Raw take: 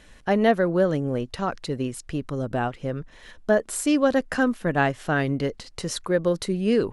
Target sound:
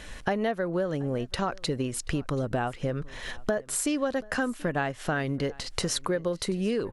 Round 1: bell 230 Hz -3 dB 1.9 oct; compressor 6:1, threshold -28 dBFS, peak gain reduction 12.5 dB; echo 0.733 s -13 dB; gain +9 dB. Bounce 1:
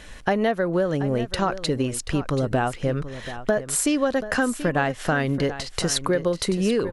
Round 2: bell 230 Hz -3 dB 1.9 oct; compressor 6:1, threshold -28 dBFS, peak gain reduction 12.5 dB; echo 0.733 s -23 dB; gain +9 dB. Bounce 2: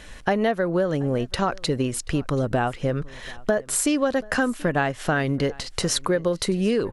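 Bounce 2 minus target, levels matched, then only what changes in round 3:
compressor: peak gain reduction -6 dB
change: compressor 6:1, threshold -35 dBFS, peak gain reduction 18.5 dB

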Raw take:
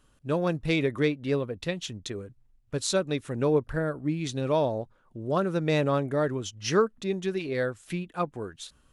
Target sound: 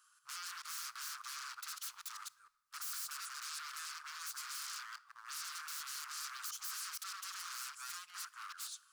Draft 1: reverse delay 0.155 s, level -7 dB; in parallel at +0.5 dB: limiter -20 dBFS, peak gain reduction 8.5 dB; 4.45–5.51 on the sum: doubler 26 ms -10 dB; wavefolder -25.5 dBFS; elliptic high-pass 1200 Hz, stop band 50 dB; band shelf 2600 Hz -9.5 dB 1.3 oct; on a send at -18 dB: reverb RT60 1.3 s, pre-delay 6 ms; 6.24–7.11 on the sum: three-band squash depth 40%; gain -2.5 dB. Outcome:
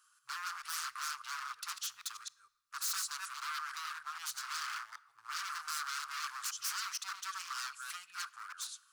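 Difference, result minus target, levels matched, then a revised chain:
wavefolder: distortion -19 dB
reverse delay 0.155 s, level -7 dB; in parallel at +0.5 dB: limiter -20 dBFS, peak gain reduction 8.5 dB; 4.45–5.51 on the sum: doubler 26 ms -10 dB; wavefolder -33 dBFS; elliptic high-pass 1200 Hz, stop band 50 dB; band shelf 2600 Hz -9.5 dB 1.3 oct; on a send at -18 dB: reverb RT60 1.3 s, pre-delay 6 ms; 6.24–7.11 on the sum: three-band squash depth 40%; gain -2.5 dB

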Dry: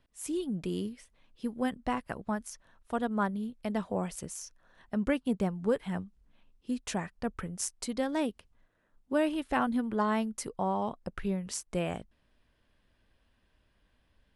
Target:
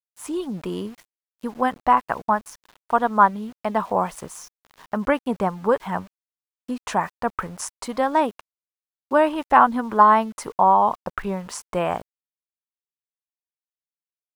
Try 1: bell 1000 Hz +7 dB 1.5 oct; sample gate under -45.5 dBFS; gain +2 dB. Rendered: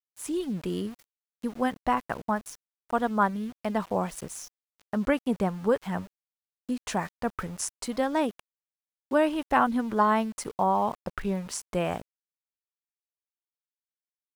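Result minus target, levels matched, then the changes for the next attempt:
1000 Hz band -3.0 dB
change: bell 1000 Hz +18 dB 1.5 oct

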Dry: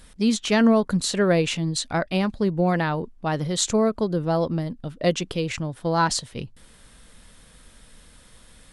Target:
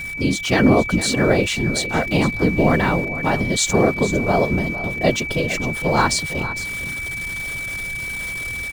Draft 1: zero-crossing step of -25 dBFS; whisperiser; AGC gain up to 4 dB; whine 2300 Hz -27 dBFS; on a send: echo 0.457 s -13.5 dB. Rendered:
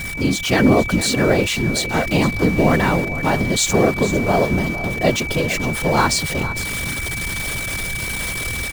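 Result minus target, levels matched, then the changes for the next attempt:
zero-crossing step: distortion +8 dB
change: zero-crossing step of -34.5 dBFS

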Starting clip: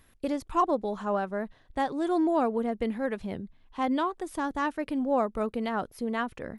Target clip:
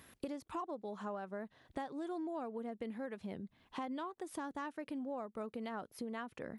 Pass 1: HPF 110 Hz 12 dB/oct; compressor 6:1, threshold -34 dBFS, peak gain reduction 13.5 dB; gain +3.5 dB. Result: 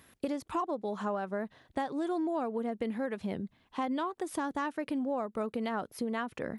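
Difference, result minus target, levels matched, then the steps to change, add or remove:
compressor: peak gain reduction -9 dB
change: compressor 6:1, threshold -44.5 dBFS, peak gain reduction 22.5 dB

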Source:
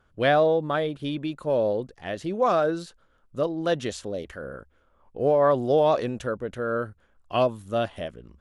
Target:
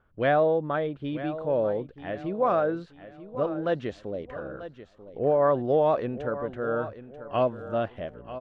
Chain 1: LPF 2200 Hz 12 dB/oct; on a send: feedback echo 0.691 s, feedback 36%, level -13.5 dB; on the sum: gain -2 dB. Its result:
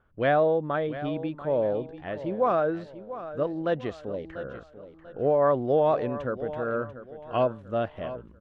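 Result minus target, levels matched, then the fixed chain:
echo 0.247 s early
LPF 2200 Hz 12 dB/oct; on a send: feedback echo 0.938 s, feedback 36%, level -13.5 dB; on the sum: gain -2 dB

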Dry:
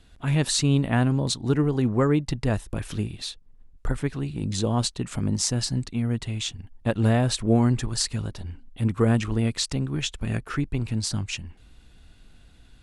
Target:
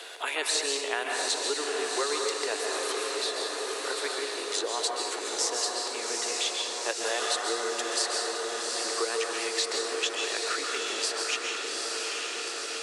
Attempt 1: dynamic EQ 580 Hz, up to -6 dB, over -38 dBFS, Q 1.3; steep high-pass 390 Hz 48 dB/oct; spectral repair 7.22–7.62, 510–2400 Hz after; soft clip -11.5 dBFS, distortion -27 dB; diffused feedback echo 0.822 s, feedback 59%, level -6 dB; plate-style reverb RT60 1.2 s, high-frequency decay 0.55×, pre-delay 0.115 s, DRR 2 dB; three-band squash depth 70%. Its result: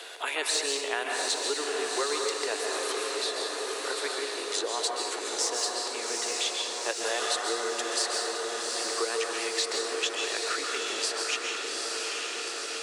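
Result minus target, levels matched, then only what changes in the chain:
soft clip: distortion +19 dB
change: soft clip -0.5 dBFS, distortion -46 dB

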